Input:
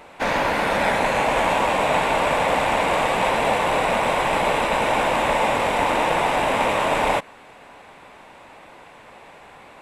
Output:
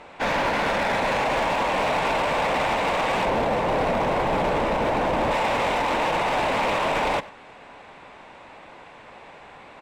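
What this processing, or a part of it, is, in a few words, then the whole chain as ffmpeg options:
limiter into clipper: -filter_complex "[0:a]lowpass=6300,asettb=1/sr,asplit=3[s0][s1][s2];[s0]atrim=end=3.254[s3];[s1]atrim=start=3.25:end=5.31,asetpts=PTS-STARTPTS,afade=t=in:d=0.004:c=qsin,afade=t=out:st=2.056:d=0.004:c=qsin,tiltshelf=f=900:g=6.5[s4];[s2]atrim=start=5.306[s5];[s3][s4]acrossfade=d=0.004:c1=hsin:c2=qsin[s6];[s6][s5]acrossfade=d=0.004:c1=qsin:c2=hsin,alimiter=limit=0.224:level=0:latency=1:release=16,asoftclip=type=hard:threshold=0.112,asplit=2[s7][s8];[s8]adelay=93.29,volume=0.112,highshelf=f=4000:g=-2.1[s9];[s7][s9]amix=inputs=2:normalize=0"

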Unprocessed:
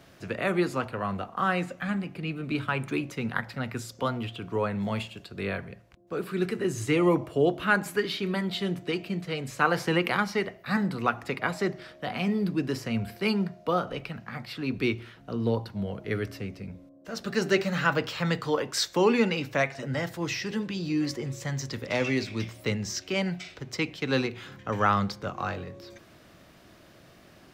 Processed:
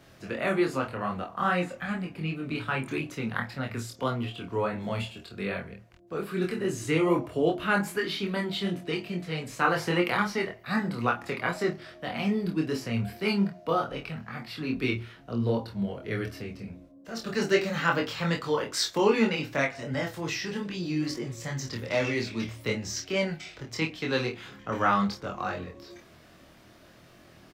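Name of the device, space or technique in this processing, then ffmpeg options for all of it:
double-tracked vocal: -filter_complex "[0:a]asplit=2[s0][s1];[s1]adelay=26,volume=0.447[s2];[s0][s2]amix=inputs=2:normalize=0,flanger=delay=22.5:depth=2.6:speed=2.5,volume=1.26"

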